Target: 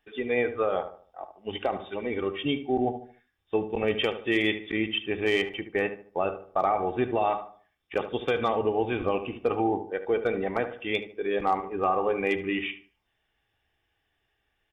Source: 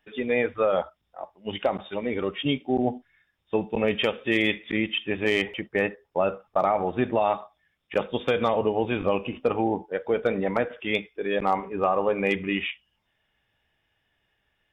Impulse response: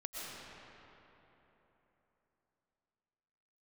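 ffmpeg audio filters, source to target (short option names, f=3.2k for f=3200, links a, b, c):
-filter_complex "[0:a]aecho=1:1:2.6:0.38,asplit=2[a][b];[b]adelay=74,lowpass=f=1.6k:p=1,volume=-10dB,asplit=2[c][d];[d]adelay=74,lowpass=f=1.6k:p=1,volume=0.39,asplit=2[e][f];[f]adelay=74,lowpass=f=1.6k:p=1,volume=0.39,asplit=2[g][h];[h]adelay=74,lowpass=f=1.6k:p=1,volume=0.39[i];[a][c][e][g][i]amix=inputs=5:normalize=0,volume=-3dB"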